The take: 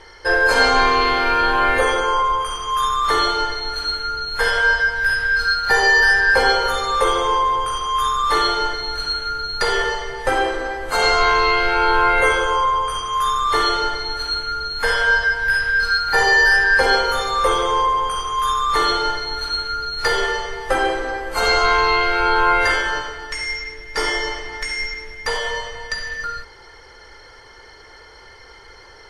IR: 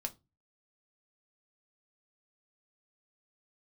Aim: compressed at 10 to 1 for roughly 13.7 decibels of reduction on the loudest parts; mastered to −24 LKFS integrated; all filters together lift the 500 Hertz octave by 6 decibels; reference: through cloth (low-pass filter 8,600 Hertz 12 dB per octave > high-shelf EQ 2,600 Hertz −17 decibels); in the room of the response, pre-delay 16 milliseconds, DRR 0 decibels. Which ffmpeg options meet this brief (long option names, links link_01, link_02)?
-filter_complex "[0:a]equalizer=frequency=500:width_type=o:gain=7.5,acompressor=threshold=-22dB:ratio=10,asplit=2[link_01][link_02];[1:a]atrim=start_sample=2205,adelay=16[link_03];[link_02][link_03]afir=irnorm=-1:irlink=0,volume=0.5dB[link_04];[link_01][link_04]amix=inputs=2:normalize=0,lowpass=8600,highshelf=frequency=2600:gain=-17,volume=2.5dB"